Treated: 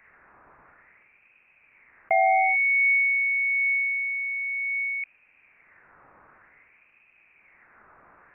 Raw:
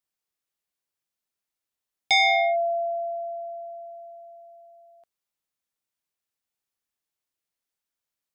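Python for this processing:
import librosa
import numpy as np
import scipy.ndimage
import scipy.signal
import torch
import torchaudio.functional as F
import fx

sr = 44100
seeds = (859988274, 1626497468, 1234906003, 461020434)

y = fx.wah_lfo(x, sr, hz=0.53, low_hz=380.0, high_hz=1800.0, q=2.2)
y = fx.freq_invert(y, sr, carrier_hz=2900)
y = fx.env_flatten(y, sr, amount_pct=70)
y = y * librosa.db_to_amplitude(6.0)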